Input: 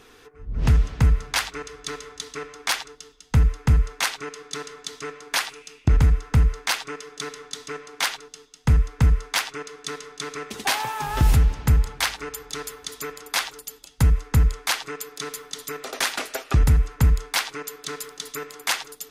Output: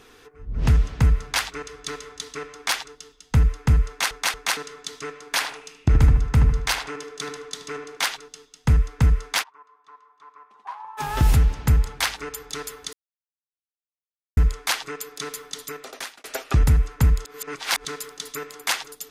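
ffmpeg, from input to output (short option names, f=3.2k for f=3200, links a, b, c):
-filter_complex "[0:a]asettb=1/sr,asplit=3[a][b][c];[a]atrim=end=5.314[d];[b]atrim=start=5.31:end=7.97,asetpts=PTS-STARTPTS,afade=t=in:d=0.004:c=qsin,afade=t=out:st=2.656:d=0.004:c=qsin,asplit=2[e][f];[f]adelay=76,lowpass=f=1.5k:p=1,volume=-5dB,asplit=2[g][h];[h]adelay=76,lowpass=f=1.5k:p=1,volume=0.4,asplit=2[i][j];[j]adelay=76,lowpass=f=1.5k:p=1,volume=0.4,asplit=2[k][l];[l]adelay=76,lowpass=f=1.5k:p=1,volume=0.4,asplit=2[m][n];[n]adelay=76,lowpass=f=1.5k:p=1,volume=0.4[o];[e][g][i][k][m][o]amix=inputs=6:normalize=0,atrim=end_sample=117306[p];[c]atrim=start=7.966[q];[d][p]acrossfade=d=0.004:c1=hsin:c2=qsin[r];[r][q]acrossfade=d=0.004:c1=qsin:c2=hsin,asplit=3[s][t][u];[s]afade=t=out:st=9.42:d=0.02[v];[t]bandpass=f=1k:t=q:w=11,afade=t=in:st=9.42:d=0.02,afade=t=out:st=10.97:d=0.02[w];[u]afade=t=in:st=10.97:d=0.02[x];[v][w][x]amix=inputs=3:normalize=0,asplit=9[y][z][aa][ab][ac][ad][ae][af][ag];[y]atrim=end=4.112[ah];[z]atrim=start=3.878:end=4.112[ai];[aa]atrim=start=3.878:end=4.112[aj];[ab]atrim=start=4.568:end=12.93,asetpts=PTS-STARTPTS,afade=t=out:st=8.358:d=0.004:c=hsin[ak];[ac]atrim=start=12.93:end=14.37,asetpts=PTS-STARTPTS,volume=0[al];[ad]atrim=start=14.37:end=16.24,asetpts=PTS-STARTPTS,afade=t=in:d=0.004:c=hsin,afade=t=out:st=1.2:d=0.67[am];[ae]atrim=start=16.24:end=17.252,asetpts=PTS-STARTPTS,afade=t=in:d=0.004:c=hsin[an];[af]atrim=start=17.248:end=17.852,asetpts=PTS-STARTPTS,areverse[ao];[ag]atrim=start=17.848[ap];[ah][ai]acrossfade=d=0.004:c1=hsin:c2=hsin[aq];[aq][aj]acrossfade=d=0.004:c1=hsin:c2=hsin[ar];[ak][al][am][an]concat=n=4:v=0:a=1[as];[ar][as]acrossfade=d=0.004:c1=hsin:c2=hsin[at];[at][ao]acrossfade=d=0.004:c1=hsin:c2=hsin[au];[au][ap]acrossfade=d=0.004:c1=hsin:c2=hsin"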